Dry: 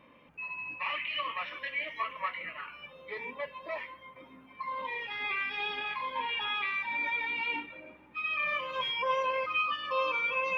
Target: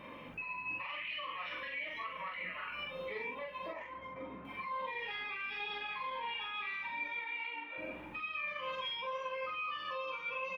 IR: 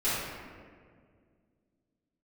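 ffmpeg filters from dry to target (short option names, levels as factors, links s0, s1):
-filter_complex "[0:a]acompressor=threshold=0.00355:ratio=2.5,alimiter=level_in=8.41:limit=0.0631:level=0:latency=1:release=81,volume=0.119,flanger=delay=5:depth=6.1:regen=83:speed=0.85:shape=sinusoidal,asettb=1/sr,asplit=3[s0][s1][s2];[s0]atrim=end=3.684[s3];[s1]atrim=start=3.68:end=4.45,asetpts=PTS-STARTPTS,afade=t=in:d=0.004:c=qsin,afade=t=out:st=0.766:d=0.004:c=qsin,adynamicsmooth=sensitivity=6.5:basefreq=2000[s4];[s2]atrim=start=4.446[s5];[s3][s4]acrossfade=d=0.004:c1=hsin:c2=qsin[s6];[s6][s5]acrossfade=d=0.004:c1=qsin:c2=hsin,asettb=1/sr,asplit=3[s7][s8][s9];[s7]atrim=end=7.194[s10];[s8]atrim=start=7.19:end=7.78,asetpts=PTS-STARTPTS,afade=t=in:d=0.004:c=qsin,afade=t=out:st=0.586:d=0.004:c=qsin,highpass=500,lowpass=3200[s11];[s9]atrim=start=7.776[s12];[s10][s11]acrossfade=d=0.004:c1=hsin:c2=qsin[s13];[s13][s12]acrossfade=d=0.004:c1=qsin:c2=hsin,asplit=2[s14][s15];[s15]adelay=44,volume=0.708[s16];[s14][s16]amix=inputs=2:normalize=0,volume=4.22"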